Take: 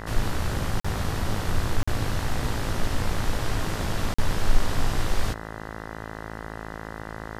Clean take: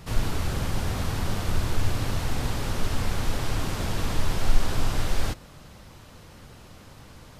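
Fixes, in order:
hum removal 54.3 Hz, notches 37
repair the gap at 0:00.80/0:01.83/0:04.14, 45 ms

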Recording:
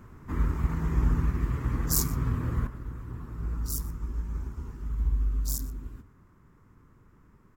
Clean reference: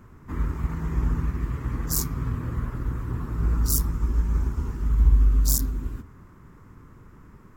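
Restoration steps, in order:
echo removal 122 ms −20 dB
level correction +9.5 dB, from 0:02.67

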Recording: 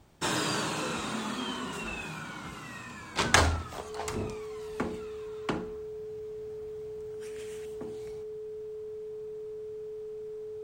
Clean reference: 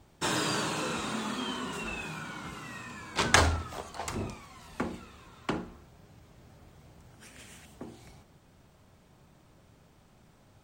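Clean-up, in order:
clipped peaks rebuilt −6 dBFS
notch filter 430 Hz, Q 30

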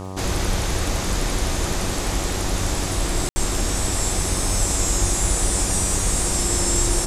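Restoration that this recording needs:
click removal
hum removal 94.5 Hz, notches 13
ambience match 0:03.29–0:03.36

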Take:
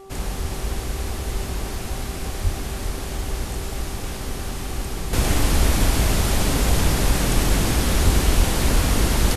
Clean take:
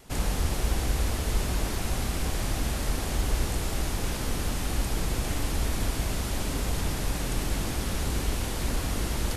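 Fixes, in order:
hum removal 388 Hz, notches 3
0:02.43–0:02.55: high-pass filter 140 Hz 24 dB per octave
0:08.04–0:08.16: high-pass filter 140 Hz 24 dB per octave
0:08.36–0:08.48: high-pass filter 140 Hz 24 dB per octave
echo removal 389 ms −10.5 dB
0:05.13: level correction −9.5 dB

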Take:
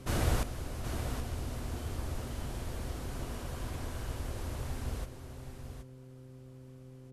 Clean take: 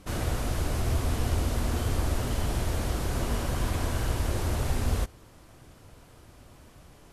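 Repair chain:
hum removal 129.3 Hz, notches 4
echo removal 772 ms −8.5 dB
level 0 dB, from 0:00.43 +11 dB

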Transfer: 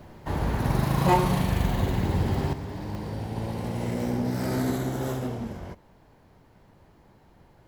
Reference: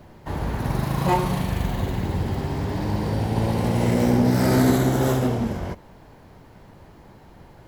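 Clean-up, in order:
repair the gap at 0:02.95/0:04.44, 1.3 ms
level 0 dB, from 0:02.53 +9 dB

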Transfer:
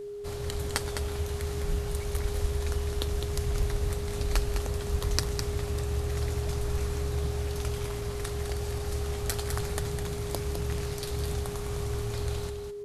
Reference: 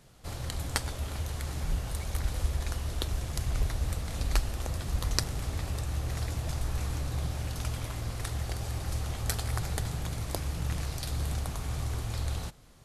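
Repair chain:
clipped peaks rebuilt −7 dBFS
notch filter 410 Hz, Q 30
echo removal 207 ms −7 dB

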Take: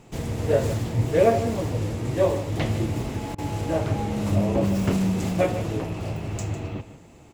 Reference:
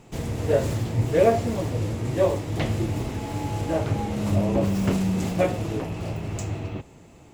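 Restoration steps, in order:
repair the gap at 0:03.35, 31 ms
echo removal 152 ms −12.5 dB

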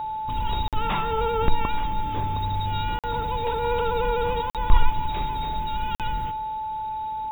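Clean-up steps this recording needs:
notch filter 870 Hz, Q 30
repair the gap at 0:00.68/0:02.99/0:04.50/0:05.95, 47 ms
echo removal 265 ms −20 dB

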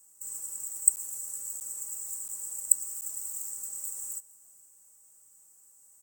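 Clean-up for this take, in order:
repair the gap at 0:00.96/0:01.60/0:02.28/0:03.01, 9.5 ms
echo removal 458 ms −23 dB

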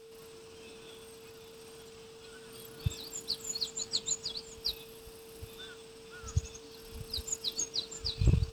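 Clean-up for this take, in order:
clipped peaks rebuilt −17.5 dBFS
click removal
notch filter 450 Hz, Q 30

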